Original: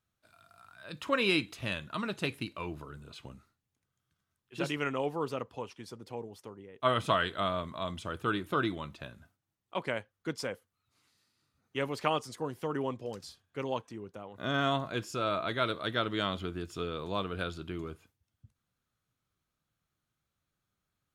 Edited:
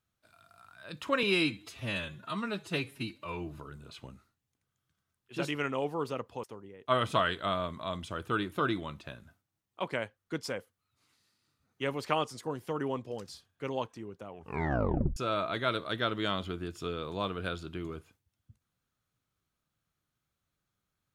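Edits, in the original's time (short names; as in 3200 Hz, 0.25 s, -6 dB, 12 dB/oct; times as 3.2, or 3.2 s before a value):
1.23–2.8 stretch 1.5×
5.65–6.38 cut
14.2 tape stop 0.91 s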